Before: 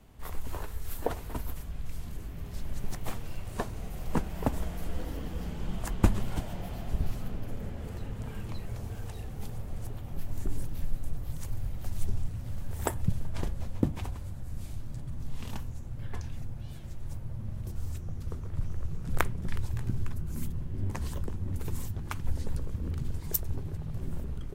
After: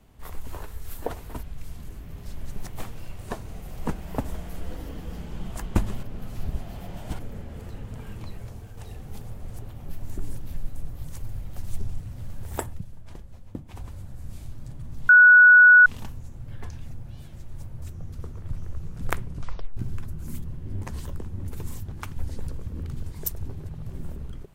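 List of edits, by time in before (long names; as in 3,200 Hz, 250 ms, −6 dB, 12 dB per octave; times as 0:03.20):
0:01.43–0:01.71: remove
0:06.31–0:07.47: reverse
0:08.63–0:09.05: fade out, to −6 dB
0:12.92–0:14.14: duck −10 dB, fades 0.18 s
0:15.37: insert tone 1,470 Hz −8.5 dBFS 0.77 s
0:17.33–0:17.90: remove
0:19.36: tape stop 0.49 s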